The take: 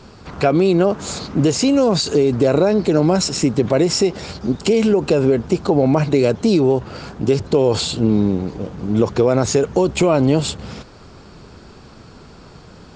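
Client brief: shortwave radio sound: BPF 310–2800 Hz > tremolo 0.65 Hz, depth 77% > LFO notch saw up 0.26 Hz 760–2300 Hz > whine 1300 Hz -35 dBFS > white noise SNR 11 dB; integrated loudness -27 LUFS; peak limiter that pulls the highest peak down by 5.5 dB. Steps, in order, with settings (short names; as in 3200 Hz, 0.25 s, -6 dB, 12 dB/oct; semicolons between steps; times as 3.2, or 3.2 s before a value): limiter -8.5 dBFS; BPF 310–2800 Hz; tremolo 0.65 Hz, depth 77%; LFO notch saw up 0.26 Hz 760–2300 Hz; whine 1300 Hz -35 dBFS; white noise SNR 11 dB; gain -0.5 dB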